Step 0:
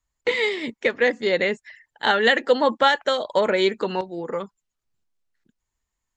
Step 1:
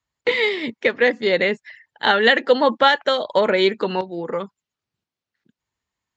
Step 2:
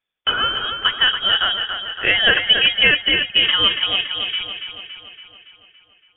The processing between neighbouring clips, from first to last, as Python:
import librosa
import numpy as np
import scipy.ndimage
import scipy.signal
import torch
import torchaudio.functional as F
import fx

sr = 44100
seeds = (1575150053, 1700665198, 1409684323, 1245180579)

y1 = scipy.signal.sosfilt(scipy.signal.cheby1(2, 1.0, [110.0, 4500.0], 'bandpass', fs=sr, output='sos'), x)
y1 = y1 * librosa.db_to_amplitude(3.5)
y2 = fx.echo_thinned(y1, sr, ms=282, feedback_pct=59, hz=170.0, wet_db=-7)
y2 = fx.freq_invert(y2, sr, carrier_hz=3500)